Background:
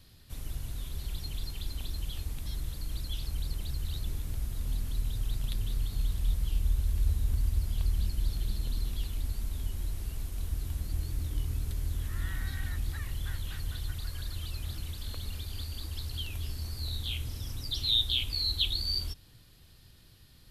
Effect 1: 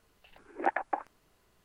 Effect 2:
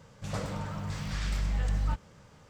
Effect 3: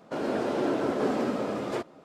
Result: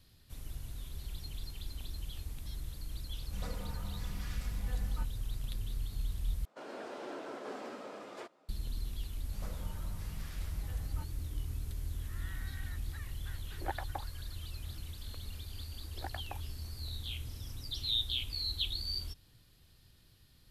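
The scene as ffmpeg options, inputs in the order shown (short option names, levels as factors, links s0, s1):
-filter_complex "[2:a]asplit=2[s0][s1];[1:a]asplit=2[s2][s3];[0:a]volume=0.501[s4];[s0]aecho=1:1:4.1:0.59[s5];[3:a]highpass=f=760:p=1[s6];[s3]tremolo=f=60:d=0.889[s7];[s4]asplit=2[s8][s9];[s8]atrim=end=6.454[s10];[s6]atrim=end=2.04,asetpts=PTS-STARTPTS,volume=0.299[s11];[s9]atrim=start=8.486[s12];[s5]atrim=end=2.49,asetpts=PTS-STARTPTS,volume=0.282,afade=t=in:d=0.004:c=hsin,afade=t=out:st=2.486:d=0.004:c=hsin,adelay=136269S[s13];[s1]atrim=end=2.49,asetpts=PTS-STARTPTS,volume=0.211,afade=t=in:d=0.004:c=hsin,afade=t=out:st=2.486:d=0.004:c=hsin,adelay=9090[s14];[s2]atrim=end=1.64,asetpts=PTS-STARTPTS,volume=0.316,afade=t=in:d=0.004:c=hsin,afade=t=out:st=1.636:d=0.004:c=hsin,adelay=13020[s15];[s7]atrim=end=1.64,asetpts=PTS-STARTPTS,volume=0.266,afade=t=in:d=0.004:c=hsin,afade=t=out:st=1.636:d=0.004:c=hsin,adelay=15380[s16];[s10][s11]acrossfade=d=0.004:c1=hsin:c2=hsin[s17];[s17][s12]acrossfade=d=0.004:c1=hsin:c2=hsin[s18];[s18][s13][s14][s15][s16]amix=inputs=5:normalize=0"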